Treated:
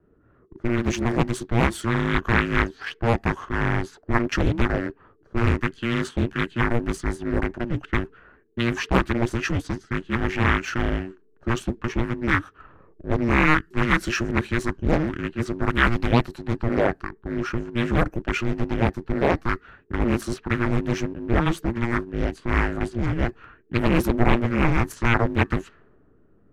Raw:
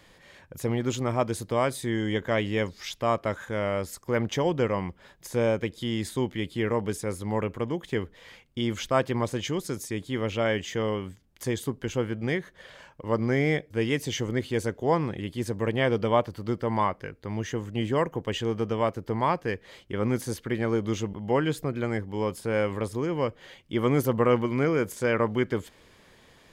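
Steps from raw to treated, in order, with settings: 15.69–16.54 tone controls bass -3 dB, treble +6 dB; frequency shift -470 Hz; bell 1600 Hz +9 dB 0.69 oct; low-pass opened by the level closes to 370 Hz, open at -23.5 dBFS; in parallel at -3 dB: backlash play -31.5 dBFS; on the sum: Doppler distortion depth 0.94 ms

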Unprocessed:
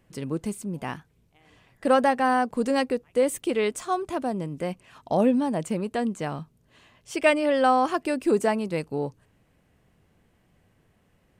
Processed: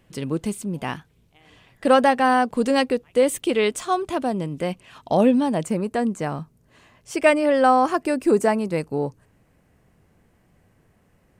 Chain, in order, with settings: bell 3300 Hz +4 dB, from 5.65 s -5.5 dB; gain +4 dB

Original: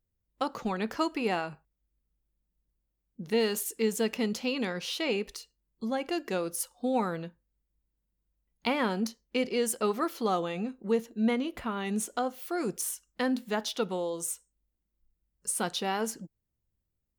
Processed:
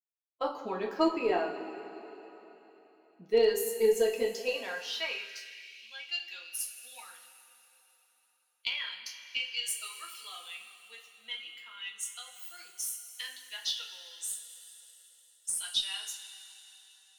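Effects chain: per-bin expansion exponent 1.5; notches 50/100/150 Hz; two-slope reverb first 0.3 s, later 3.7 s, from -17 dB, DRR -2 dB; high-pass sweep 380 Hz -> 2900 Hz, 4.11–5.98; added harmonics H 4 -31 dB, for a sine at -12.5 dBFS; gain -3 dB

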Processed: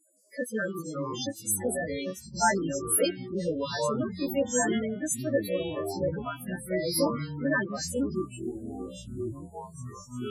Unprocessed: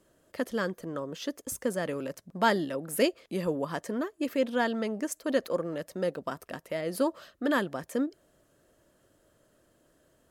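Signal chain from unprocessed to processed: frequency quantiser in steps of 2 st; loudest bins only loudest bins 8; echoes that change speed 0.165 s, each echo -7 st, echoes 3, each echo -6 dB; gain +1.5 dB

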